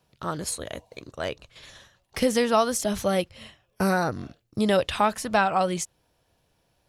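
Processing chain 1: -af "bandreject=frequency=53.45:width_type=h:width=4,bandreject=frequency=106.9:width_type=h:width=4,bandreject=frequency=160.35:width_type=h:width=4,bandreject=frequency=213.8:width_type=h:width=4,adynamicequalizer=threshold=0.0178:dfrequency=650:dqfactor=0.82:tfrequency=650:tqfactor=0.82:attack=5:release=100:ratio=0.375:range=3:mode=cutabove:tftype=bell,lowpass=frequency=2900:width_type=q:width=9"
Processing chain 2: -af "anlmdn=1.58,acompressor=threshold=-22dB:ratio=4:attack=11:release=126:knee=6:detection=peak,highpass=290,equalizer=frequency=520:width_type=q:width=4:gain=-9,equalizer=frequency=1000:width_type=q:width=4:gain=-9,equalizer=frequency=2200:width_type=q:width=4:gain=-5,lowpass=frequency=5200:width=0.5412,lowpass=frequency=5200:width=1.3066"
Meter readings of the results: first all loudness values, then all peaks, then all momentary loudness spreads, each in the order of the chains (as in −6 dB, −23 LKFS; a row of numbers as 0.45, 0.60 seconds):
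−23.5, −33.0 LKFS; −3.0, −15.5 dBFS; 18, 15 LU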